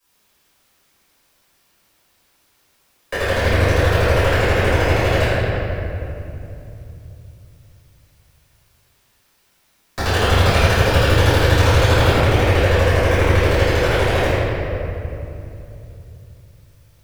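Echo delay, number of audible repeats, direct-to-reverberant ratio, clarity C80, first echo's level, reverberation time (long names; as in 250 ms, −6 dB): no echo audible, no echo audible, −16.5 dB, −3.0 dB, no echo audible, 2.9 s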